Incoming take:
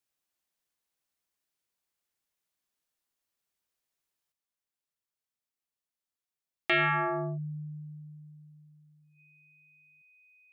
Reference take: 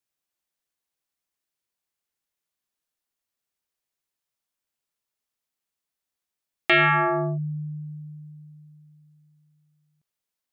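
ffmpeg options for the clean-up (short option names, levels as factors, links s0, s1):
-af "bandreject=f=2500:w=30,asetnsamples=n=441:p=0,asendcmd='4.32 volume volume 7.5dB',volume=1"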